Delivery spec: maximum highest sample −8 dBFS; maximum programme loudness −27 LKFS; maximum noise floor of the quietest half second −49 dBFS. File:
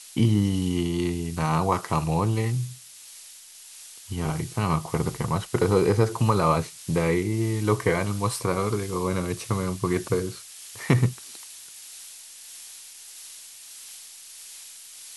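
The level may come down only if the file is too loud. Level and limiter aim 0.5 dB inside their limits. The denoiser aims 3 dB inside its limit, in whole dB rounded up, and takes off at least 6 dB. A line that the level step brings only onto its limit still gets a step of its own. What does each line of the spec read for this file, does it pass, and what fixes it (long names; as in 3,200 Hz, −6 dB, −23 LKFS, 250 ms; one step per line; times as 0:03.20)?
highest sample −6.5 dBFS: out of spec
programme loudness −25.5 LKFS: out of spec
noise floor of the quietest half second −46 dBFS: out of spec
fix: broadband denoise 6 dB, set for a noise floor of −46 dBFS
level −2 dB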